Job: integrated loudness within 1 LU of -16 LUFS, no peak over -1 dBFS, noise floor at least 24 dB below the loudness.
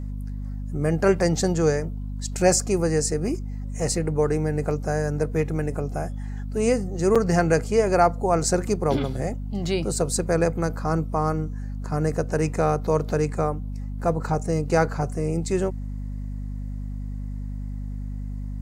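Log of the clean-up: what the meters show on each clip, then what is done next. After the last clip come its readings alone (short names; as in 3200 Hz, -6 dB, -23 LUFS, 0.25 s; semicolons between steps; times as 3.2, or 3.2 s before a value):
dropouts 1; longest dropout 5.8 ms; hum 50 Hz; harmonics up to 250 Hz; hum level -28 dBFS; loudness -25.0 LUFS; peak -5.0 dBFS; loudness target -16.0 LUFS
-> interpolate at 7.15, 5.8 ms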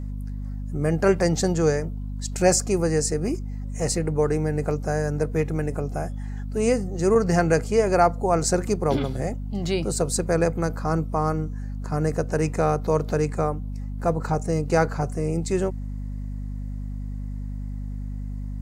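dropouts 0; hum 50 Hz; harmonics up to 250 Hz; hum level -28 dBFS
-> de-hum 50 Hz, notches 5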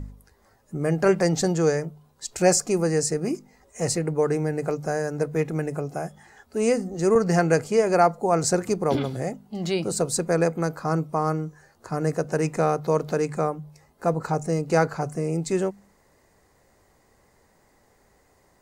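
hum none; loudness -24.5 LUFS; peak -5.5 dBFS; loudness target -16.0 LUFS
-> gain +8.5 dB; limiter -1 dBFS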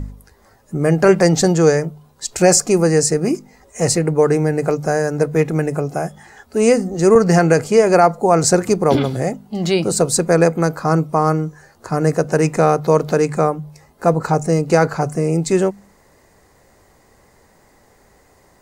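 loudness -16.5 LUFS; peak -1.0 dBFS; noise floor -53 dBFS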